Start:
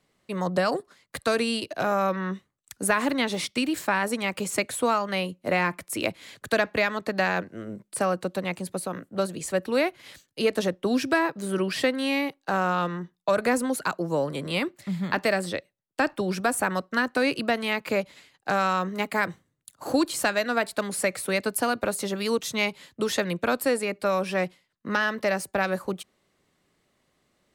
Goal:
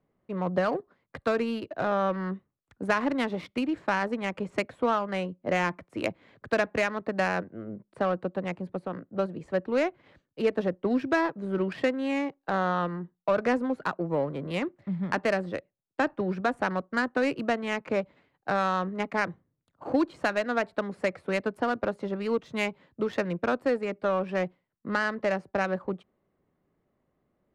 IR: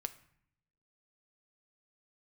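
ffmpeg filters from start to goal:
-af "adynamicsmooth=sensitivity=1:basefreq=1.2k,volume=-1.5dB"

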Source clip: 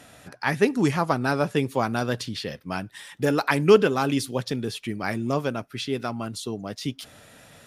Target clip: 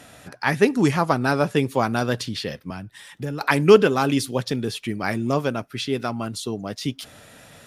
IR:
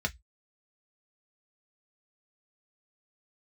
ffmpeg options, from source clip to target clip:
-filter_complex "[0:a]asettb=1/sr,asplit=3[a][b][c];[a]atrim=end=2.704[d];[b]atrim=start=2.7:end=3.41,asetpts=PTS-STARTPTS,afade=t=in:d=0.004:c=qsin,afade=t=out:st=0.706:d=0.004:c=qsin,acrossover=split=160[e][f];[f]acompressor=threshold=-45dB:ratio=2[g];[e][g]amix=inputs=2:normalize=0[h];[c]atrim=start=3.406[i];[d][h]acrossfade=d=0.004:c1=hsin:c2=qsin[j];[j][i]acrossfade=d=0.004:c1=qsin:c2=hsin,volume=3dB"

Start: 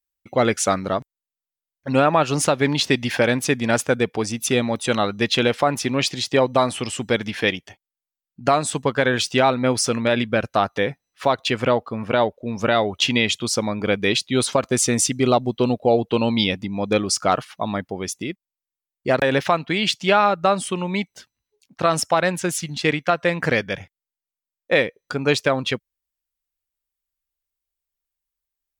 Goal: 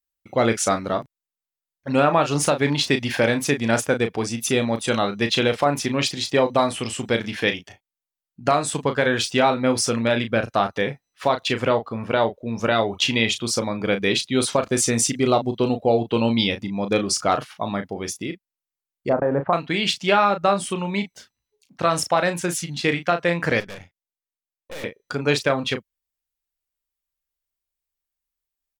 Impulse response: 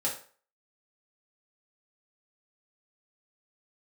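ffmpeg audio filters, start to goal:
-filter_complex "[0:a]asettb=1/sr,asplit=3[a][b][c];[a]atrim=end=19.094[d];[b]atrim=start=19.09:end=19.53,asetpts=PTS-STARTPTS,afade=t=in:d=0.004:c=qsin,afade=t=out:st=0.436:d=0.004:c=qsin,lowpass=f=1.2k:w=0.5412,lowpass=f=1.2k:w=1.3066[e];[c]atrim=start=19.526[f];[d][e]acrossfade=d=0.004:c1=hsin:c2=qsin[g];[g][f]acrossfade=d=0.004:c1=qsin:c2=hsin,asplit=2[h][i];[i]adelay=35,volume=-8.5dB[j];[h][j]amix=inputs=2:normalize=0,asettb=1/sr,asplit=3[k][l][m];[k]atrim=end=23.604[n];[l]atrim=start=23.6:end=24.84,asetpts=PTS-STARTPTS,afade=t=in:d=0.004:c=qsin,afade=t=out:st=1.236:d=0.004:c=qsin,aeval=exprs='(tanh(39.8*val(0)+0.8)-tanh(0.8))/39.8':c=same[o];[m]atrim=start=24.836[p];[n][o]acrossfade=d=0.004:c1=hsin:c2=qsin[q];[q][p]acrossfade=d=0.004:c1=qsin:c2=hsin,volume=-1.5dB"

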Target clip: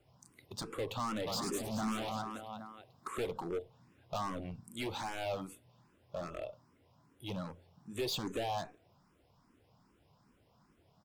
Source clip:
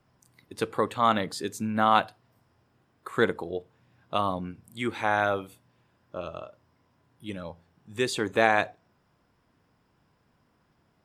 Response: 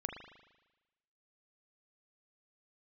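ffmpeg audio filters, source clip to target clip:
-filter_complex "[0:a]acompressor=threshold=-25dB:ratio=6,asplit=3[a][b][c];[a]afade=t=out:st=1.26:d=0.02[d];[b]aecho=1:1:100|225|381.2|576.6|820.7:0.631|0.398|0.251|0.158|0.1,afade=t=in:st=1.26:d=0.02,afade=t=out:st=3.26:d=0.02[e];[c]afade=t=in:st=3.26:d=0.02[f];[d][e][f]amix=inputs=3:normalize=0,volume=34dB,asoftclip=hard,volume=-34dB,equalizer=f=1.7k:w=2.1:g=-7,asplit=2[g][h];[h]afreqshift=2.5[i];[g][i]amix=inputs=2:normalize=1,volume=3dB"

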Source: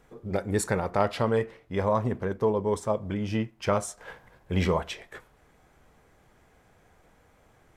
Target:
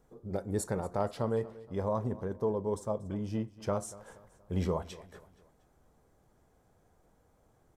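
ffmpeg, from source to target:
-filter_complex "[0:a]equalizer=f=2.3k:t=o:w=1.5:g=-12,asplit=2[a][b];[b]aecho=0:1:236|472|708:0.112|0.0471|0.0198[c];[a][c]amix=inputs=2:normalize=0,volume=-5.5dB"

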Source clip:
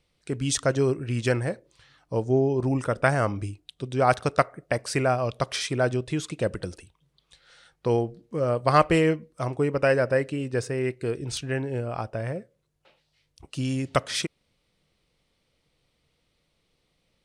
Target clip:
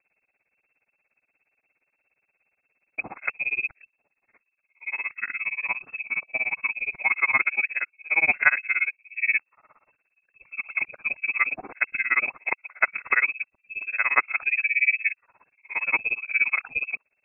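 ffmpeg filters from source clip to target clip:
-af "areverse,tremolo=f=17:d=0.99,lowpass=f=2.3k:t=q:w=0.5098,lowpass=f=2.3k:t=q:w=0.6013,lowpass=f=2.3k:t=q:w=0.9,lowpass=f=2.3k:t=q:w=2.563,afreqshift=-2700,volume=3.5dB"

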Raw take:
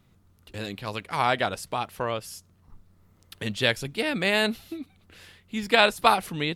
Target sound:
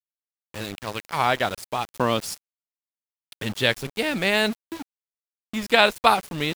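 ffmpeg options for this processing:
-filter_complex "[0:a]asplit=3[a][b][c];[a]afade=t=out:st=1.93:d=0.02[d];[b]equalizer=f=125:t=o:w=1:g=3,equalizer=f=250:t=o:w=1:g=11,equalizer=f=1k:t=o:w=1:g=4,equalizer=f=4k:t=o:w=1:g=9,equalizer=f=8k:t=o:w=1:g=8,afade=t=in:st=1.93:d=0.02,afade=t=out:st=2.33:d=0.02[e];[c]afade=t=in:st=2.33:d=0.02[f];[d][e][f]amix=inputs=3:normalize=0,aeval=exprs='val(0)*gte(abs(val(0)),0.02)':c=same,volume=2dB"

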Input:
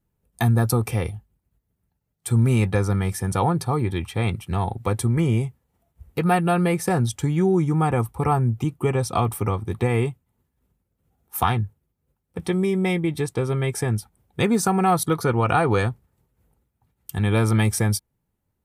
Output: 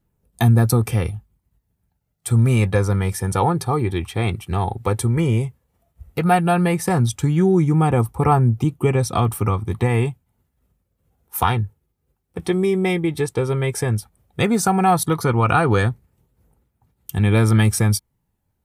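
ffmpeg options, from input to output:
-af "aphaser=in_gain=1:out_gain=1:delay=2.8:decay=0.24:speed=0.12:type=triangular,volume=2.5dB"

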